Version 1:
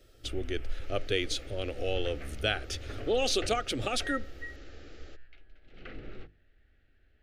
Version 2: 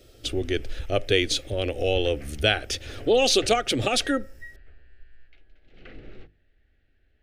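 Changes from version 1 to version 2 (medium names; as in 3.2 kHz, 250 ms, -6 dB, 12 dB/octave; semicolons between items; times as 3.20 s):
speech +8.5 dB; second sound: muted; master: add peaking EQ 1.3 kHz -5.5 dB 0.32 oct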